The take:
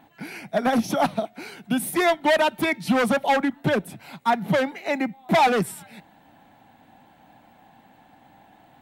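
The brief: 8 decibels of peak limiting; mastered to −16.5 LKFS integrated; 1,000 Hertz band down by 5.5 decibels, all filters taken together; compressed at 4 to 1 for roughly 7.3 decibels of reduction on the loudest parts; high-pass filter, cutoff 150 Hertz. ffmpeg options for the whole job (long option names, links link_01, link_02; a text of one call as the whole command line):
ffmpeg -i in.wav -af "highpass=150,equalizer=frequency=1000:width_type=o:gain=-7.5,acompressor=threshold=-26dB:ratio=4,volume=18dB,alimiter=limit=-6.5dB:level=0:latency=1" out.wav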